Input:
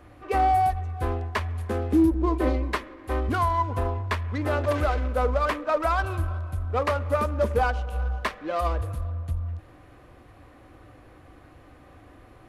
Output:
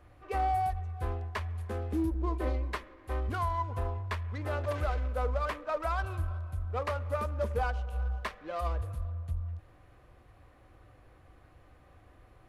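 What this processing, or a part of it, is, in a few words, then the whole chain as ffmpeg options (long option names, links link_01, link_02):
low shelf boost with a cut just above: -af "lowshelf=frequency=65:gain=7,equalizer=frequency=280:width_type=o:width=0.55:gain=-6,volume=-8.5dB"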